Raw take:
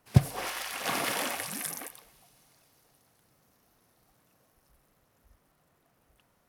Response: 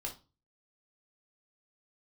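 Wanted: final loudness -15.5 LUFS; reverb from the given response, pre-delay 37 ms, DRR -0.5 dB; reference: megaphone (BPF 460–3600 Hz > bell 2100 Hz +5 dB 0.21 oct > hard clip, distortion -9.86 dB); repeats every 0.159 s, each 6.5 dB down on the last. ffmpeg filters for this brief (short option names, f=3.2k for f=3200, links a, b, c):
-filter_complex "[0:a]aecho=1:1:159|318|477|636|795|954:0.473|0.222|0.105|0.0491|0.0231|0.0109,asplit=2[a][b];[1:a]atrim=start_sample=2205,adelay=37[c];[b][c]afir=irnorm=-1:irlink=0,volume=0.5dB[d];[a][d]amix=inputs=2:normalize=0,highpass=460,lowpass=3.6k,equalizer=f=2.1k:t=o:w=0.21:g=5,asoftclip=type=hard:threshold=-29dB,volume=18dB"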